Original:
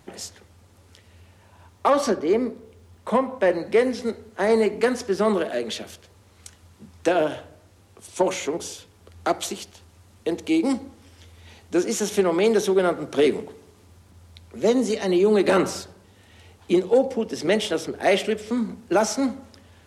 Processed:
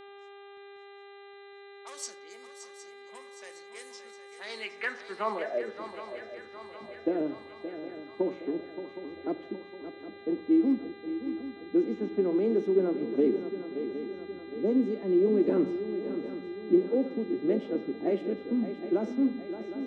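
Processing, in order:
low-pass that shuts in the quiet parts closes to 400 Hz, open at −16 dBFS
parametric band 660 Hz −3 dB 1.7 octaves
band-pass filter sweep 7,600 Hz → 300 Hz, 0:04.04–0:05.97
hum with harmonics 400 Hz, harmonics 10, −49 dBFS −6 dB per octave
feedback echo with a long and a short gap by turns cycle 764 ms, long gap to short 3 to 1, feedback 52%, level −11 dB

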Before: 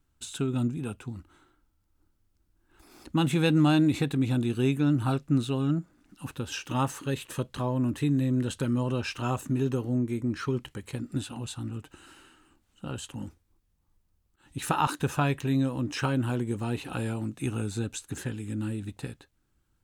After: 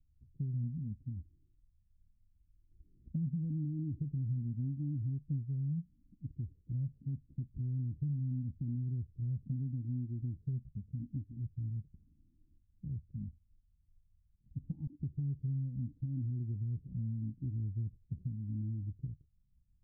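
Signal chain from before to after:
inverse Chebyshev low-pass filter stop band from 1,200 Hz, stop band 80 dB
downward compressor 3 to 1, threshold −33 dBFS, peak gain reduction 7.5 dB
flanger whose copies keep moving one way rising 0.8 Hz
level +3 dB

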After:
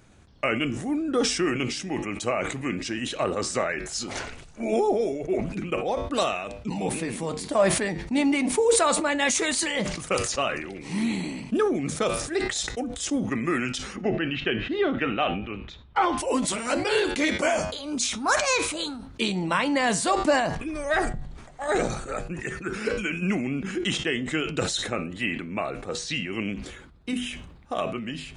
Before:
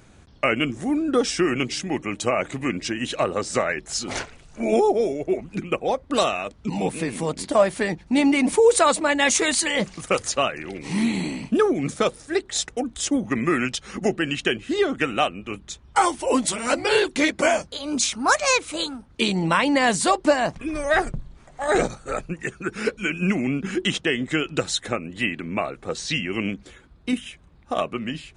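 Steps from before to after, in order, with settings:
0:13.96–0:16.18: low-pass filter 3,700 Hz 24 dB per octave
flanger 0.31 Hz, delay 9.1 ms, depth 1.2 ms, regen −85%
level that may fall only so fast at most 55 dB per second

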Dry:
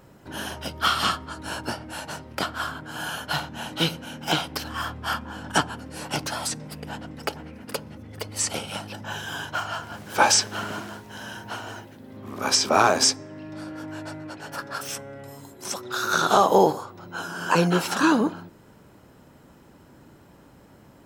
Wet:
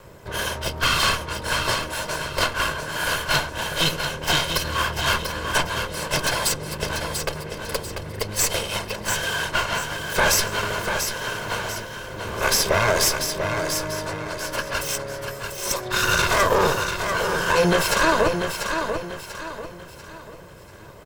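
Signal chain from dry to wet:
lower of the sound and its delayed copy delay 1.9 ms
brickwall limiter −17.5 dBFS, peak gain reduction 11 dB
repeating echo 691 ms, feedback 38%, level −6.5 dB
level +8 dB

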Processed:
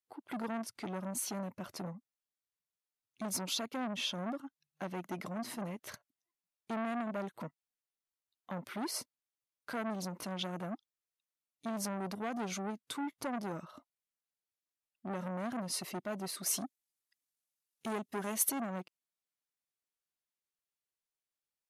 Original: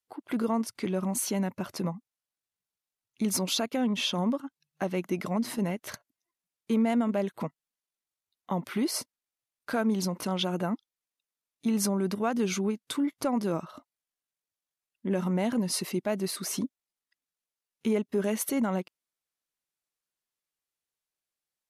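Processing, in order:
0:16.46–0:18.52: parametric band 12,000 Hz +9.5 dB 2.2 octaves
saturating transformer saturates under 2,300 Hz
level −6.5 dB

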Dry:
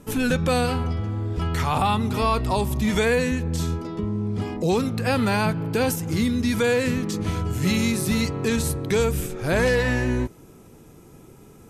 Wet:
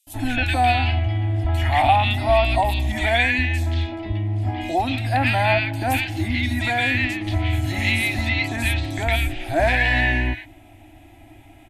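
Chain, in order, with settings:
drawn EQ curve 110 Hz 0 dB, 170 Hz −28 dB, 310 Hz +2 dB, 450 Hz −29 dB, 680 Hz +9 dB, 1,200 Hz −13 dB, 1,900 Hz +8 dB, 3,500 Hz +3 dB, 5,800 Hz −13 dB, 8,900 Hz −10 dB
three-band delay without the direct sound highs, lows, mids 70/180 ms, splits 1,600/4,900 Hz
level +5.5 dB

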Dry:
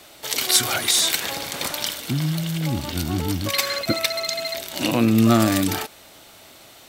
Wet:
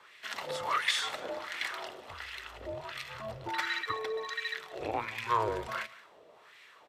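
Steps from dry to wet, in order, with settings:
frequency shifter −220 Hz
auto-filter band-pass sine 1.4 Hz 550–2,100 Hz
single-tap delay 178 ms −20 dB

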